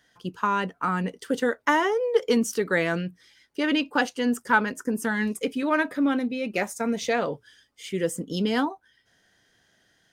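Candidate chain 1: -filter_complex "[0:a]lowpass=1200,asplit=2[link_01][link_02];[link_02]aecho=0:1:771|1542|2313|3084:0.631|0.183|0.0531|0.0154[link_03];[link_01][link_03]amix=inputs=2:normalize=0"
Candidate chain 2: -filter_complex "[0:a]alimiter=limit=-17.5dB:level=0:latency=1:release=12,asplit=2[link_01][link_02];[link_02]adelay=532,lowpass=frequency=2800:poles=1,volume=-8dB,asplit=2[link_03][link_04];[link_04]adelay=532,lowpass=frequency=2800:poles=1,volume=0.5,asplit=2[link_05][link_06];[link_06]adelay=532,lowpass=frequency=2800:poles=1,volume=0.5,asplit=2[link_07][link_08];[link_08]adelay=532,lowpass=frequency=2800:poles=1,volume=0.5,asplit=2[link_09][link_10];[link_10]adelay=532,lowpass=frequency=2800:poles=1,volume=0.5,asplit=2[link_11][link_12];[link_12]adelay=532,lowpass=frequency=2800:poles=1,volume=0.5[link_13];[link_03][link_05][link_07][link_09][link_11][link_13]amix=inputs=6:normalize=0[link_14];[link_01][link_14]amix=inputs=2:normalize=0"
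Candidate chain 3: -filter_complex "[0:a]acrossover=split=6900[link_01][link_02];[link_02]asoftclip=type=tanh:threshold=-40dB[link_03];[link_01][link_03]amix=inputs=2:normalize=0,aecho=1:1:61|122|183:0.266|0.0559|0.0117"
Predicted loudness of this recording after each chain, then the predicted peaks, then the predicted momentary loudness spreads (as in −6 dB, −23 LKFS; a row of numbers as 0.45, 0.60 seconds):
−26.0, −27.5, −25.5 LKFS; −9.0, −14.5, −7.0 dBFS; 8, 10, 8 LU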